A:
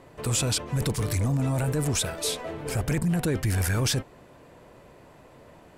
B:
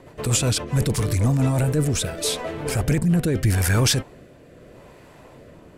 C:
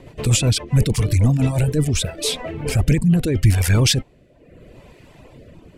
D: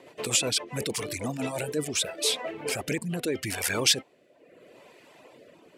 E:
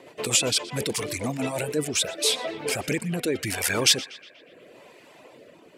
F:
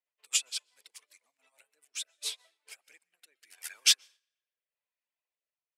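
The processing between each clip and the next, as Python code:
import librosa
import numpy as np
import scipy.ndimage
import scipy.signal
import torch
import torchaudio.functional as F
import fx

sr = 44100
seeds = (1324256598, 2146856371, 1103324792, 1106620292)

y1 = fx.rotary_switch(x, sr, hz=8.0, then_hz=0.8, switch_at_s=0.43)
y1 = F.gain(torch.from_numpy(y1), 7.0).numpy()
y2 = fx.tilt_eq(y1, sr, slope=-2.0)
y2 = fx.dereverb_blind(y2, sr, rt60_s=0.86)
y2 = fx.high_shelf_res(y2, sr, hz=1900.0, db=6.5, q=1.5)
y3 = scipy.signal.sosfilt(scipy.signal.butter(2, 390.0, 'highpass', fs=sr, output='sos'), y2)
y3 = F.gain(torch.from_numpy(y3), -3.0).numpy()
y4 = fx.echo_banded(y3, sr, ms=121, feedback_pct=63, hz=2000.0, wet_db=-15)
y4 = F.gain(torch.from_numpy(y4), 3.0).numpy()
y5 = scipy.signal.sosfilt(scipy.signal.butter(2, 1200.0, 'highpass', fs=sr, output='sos'), y4)
y5 = fx.rev_plate(y5, sr, seeds[0], rt60_s=1.2, hf_ratio=0.7, predelay_ms=115, drr_db=12.5)
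y5 = fx.upward_expand(y5, sr, threshold_db=-42.0, expansion=2.5)
y5 = F.gain(torch.from_numpy(y5), -2.5).numpy()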